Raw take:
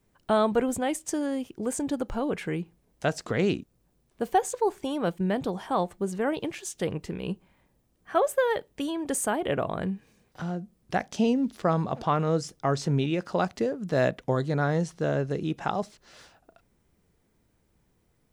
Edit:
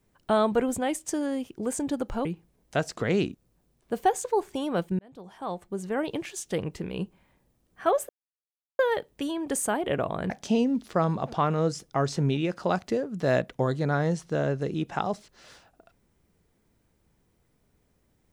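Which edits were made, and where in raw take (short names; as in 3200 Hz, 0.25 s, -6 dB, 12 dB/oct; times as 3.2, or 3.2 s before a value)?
2.25–2.54 cut
5.28–6.43 fade in
8.38 insert silence 0.70 s
9.89–10.99 cut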